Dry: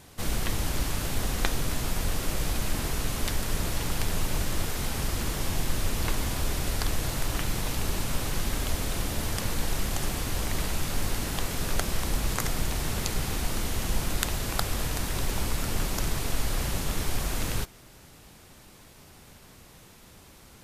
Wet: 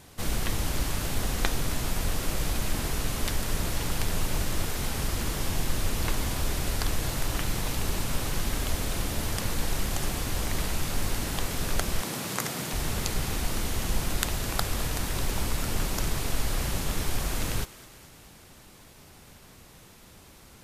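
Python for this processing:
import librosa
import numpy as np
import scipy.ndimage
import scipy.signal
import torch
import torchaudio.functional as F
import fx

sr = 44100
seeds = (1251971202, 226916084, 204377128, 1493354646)

y = fx.highpass(x, sr, hz=130.0, slope=24, at=(12.01, 12.73))
y = fx.echo_thinned(y, sr, ms=210, feedback_pct=64, hz=420.0, wet_db=-17.5)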